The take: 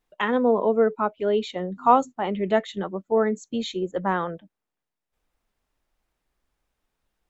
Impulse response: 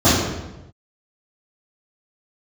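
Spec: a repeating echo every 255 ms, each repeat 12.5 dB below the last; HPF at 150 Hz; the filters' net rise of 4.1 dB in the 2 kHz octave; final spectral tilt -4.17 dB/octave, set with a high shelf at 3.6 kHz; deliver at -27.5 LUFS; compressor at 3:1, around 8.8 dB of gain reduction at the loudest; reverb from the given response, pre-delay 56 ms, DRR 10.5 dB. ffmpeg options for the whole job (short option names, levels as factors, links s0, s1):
-filter_complex "[0:a]highpass=150,equalizer=f=2000:t=o:g=6,highshelf=f=3600:g=-4.5,acompressor=threshold=0.0891:ratio=3,aecho=1:1:255|510|765:0.237|0.0569|0.0137,asplit=2[s0][s1];[1:a]atrim=start_sample=2205,adelay=56[s2];[s1][s2]afir=irnorm=-1:irlink=0,volume=0.0168[s3];[s0][s3]amix=inputs=2:normalize=0,volume=0.841"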